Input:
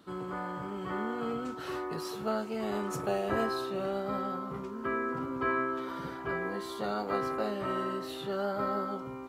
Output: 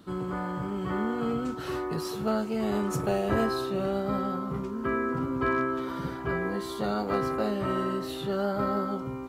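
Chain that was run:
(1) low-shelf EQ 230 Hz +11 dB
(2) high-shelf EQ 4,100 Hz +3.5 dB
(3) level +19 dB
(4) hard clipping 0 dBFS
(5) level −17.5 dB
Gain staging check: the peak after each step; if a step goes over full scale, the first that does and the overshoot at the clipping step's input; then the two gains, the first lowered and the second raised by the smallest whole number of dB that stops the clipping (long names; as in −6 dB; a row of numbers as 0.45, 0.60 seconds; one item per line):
−13.5, −13.5, +5.5, 0.0, −17.5 dBFS
step 3, 5.5 dB
step 3 +13 dB, step 5 −11.5 dB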